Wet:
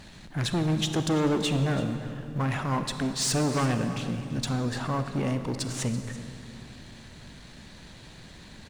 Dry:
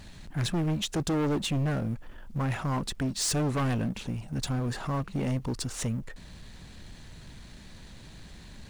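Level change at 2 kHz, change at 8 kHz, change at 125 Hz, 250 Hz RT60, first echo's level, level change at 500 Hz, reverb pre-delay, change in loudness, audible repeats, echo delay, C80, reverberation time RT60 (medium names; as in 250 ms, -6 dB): +3.5 dB, +1.5 dB, +1.0 dB, 3.4 s, -16.0 dB, +3.5 dB, 32 ms, +2.0 dB, 1, 334 ms, 8.5 dB, 2.6 s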